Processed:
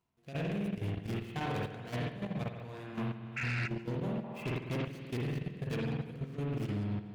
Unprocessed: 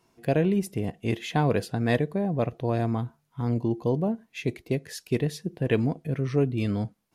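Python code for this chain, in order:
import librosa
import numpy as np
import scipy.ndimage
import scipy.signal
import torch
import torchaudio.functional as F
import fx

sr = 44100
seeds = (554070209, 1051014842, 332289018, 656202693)

y = scipy.ndimage.median_filter(x, 25, mode='constant')
y = fx.rider(y, sr, range_db=5, speed_s=0.5)
y = fx.tone_stack(y, sr, knobs='5-5-5')
y = fx.rev_spring(y, sr, rt60_s=1.6, pass_ms=(49,), chirp_ms=55, drr_db=-4.5)
y = fx.level_steps(y, sr, step_db=13)
y = fx.spec_paint(y, sr, seeds[0], shape='noise', start_s=3.36, length_s=0.32, low_hz=1300.0, high_hz=2800.0, level_db=-42.0)
y = fx.peak_eq(y, sr, hz=910.0, db=11.0, octaves=1.3, at=(4.24, 4.87))
y = 10.0 ** (-36.5 / 20.0) * np.tanh(y / 10.0 ** (-36.5 / 20.0))
y = fx.echo_warbled(y, sr, ms=145, feedback_pct=55, rate_hz=2.8, cents=131, wet_db=-19)
y = y * 10.0 ** (7.5 / 20.0)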